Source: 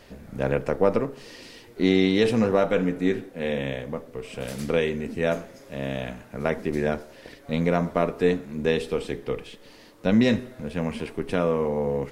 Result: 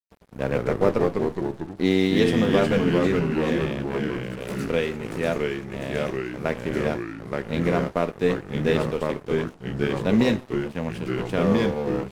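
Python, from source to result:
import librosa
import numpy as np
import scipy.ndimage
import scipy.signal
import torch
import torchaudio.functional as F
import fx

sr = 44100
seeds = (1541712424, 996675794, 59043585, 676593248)

y = np.sign(x) * np.maximum(np.abs(x) - 10.0 ** (-37.5 / 20.0), 0.0)
y = fx.echo_pitch(y, sr, ms=84, semitones=-2, count=3, db_per_echo=-3.0)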